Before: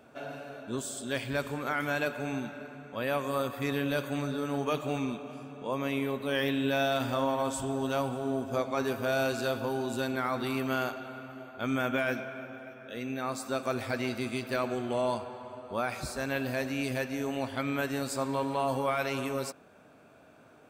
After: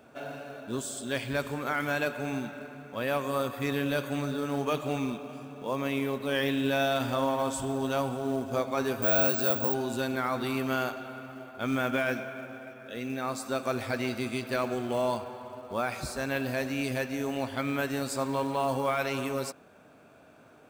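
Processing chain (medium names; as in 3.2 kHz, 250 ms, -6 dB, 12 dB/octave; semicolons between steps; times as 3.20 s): in parallel at -3 dB: short-mantissa float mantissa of 2-bit; 9.02–9.74 s: on the sum: careless resampling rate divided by 2×, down none, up zero stuff; trim -3.5 dB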